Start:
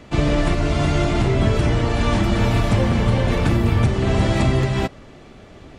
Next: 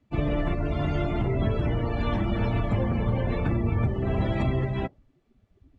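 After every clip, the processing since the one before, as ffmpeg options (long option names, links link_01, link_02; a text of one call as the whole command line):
ffmpeg -i in.wav -af "afftdn=noise_reduction=23:noise_floor=-28,volume=-7.5dB" out.wav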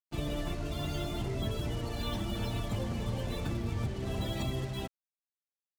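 ffmpeg -i in.wav -af "aexciter=amount=8.1:drive=3.7:freq=3200,acrusher=bits=5:mix=0:aa=0.5,volume=-9dB" out.wav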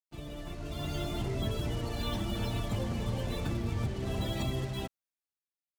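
ffmpeg -i in.wav -af "dynaudnorm=framelen=110:gausssize=13:maxgain=9.5dB,volume=-8.5dB" out.wav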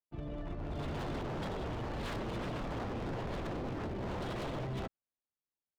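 ffmpeg -i in.wav -af "adynamicsmooth=sensitivity=4.5:basefreq=1400,aeval=exprs='0.0188*(abs(mod(val(0)/0.0188+3,4)-2)-1)':channel_layout=same,volume=1.5dB" out.wav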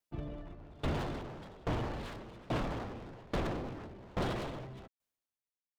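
ffmpeg -i in.wav -af "aeval=exprs='val(0)*pow(10,-25*if(lt(mod(1.2*n/s,1),2*abs(1.2)/1000),1-mod(1.2*n/s,1)/(2*abs(1.2)/1000),(mod(1.2*n/s,1)-2*abs(1.2)/1000)/(1-2*abs(1.2)/1000))/20)':channel_layout=same,volume=7.5dB" out.wav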